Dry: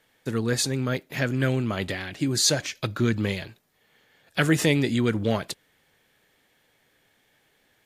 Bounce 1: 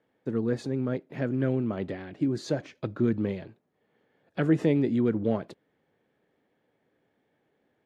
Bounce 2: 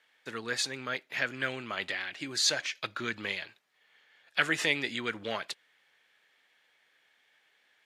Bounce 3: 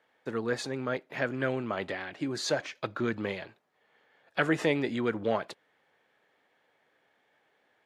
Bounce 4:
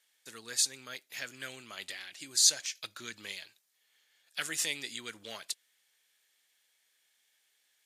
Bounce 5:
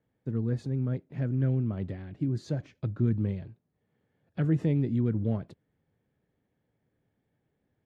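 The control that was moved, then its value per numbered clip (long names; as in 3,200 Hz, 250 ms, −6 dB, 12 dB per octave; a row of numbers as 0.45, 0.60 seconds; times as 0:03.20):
resonant band-pass, frequency: 310, 2,200, 840, 7,800, 110 Hertz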